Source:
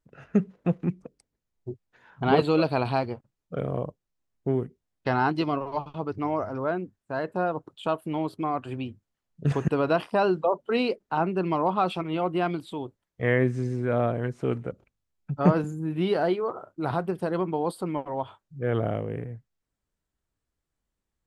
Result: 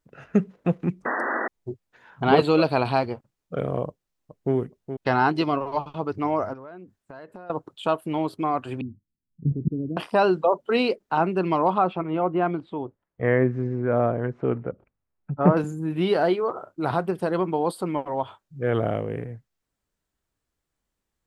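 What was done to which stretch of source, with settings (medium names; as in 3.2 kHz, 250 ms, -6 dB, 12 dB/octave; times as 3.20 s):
1.05–1.48 s: painted sound noise 210–2000 Hz -30 dBFS
3.87–4.54 s: echo throw 420 ms, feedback 15%, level -9 dB
6.53–7.50 s: compression 10:1, threshold -41 dBFS
8.81–9.97 s: inverse Chebyshev low-pass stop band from 1 kHz, stop band 60 dB
11.78–15.57 s: low-pass 1.6 kHz
whole clip: bass shelf 200 Hz -4.5 dB; trim +4 dB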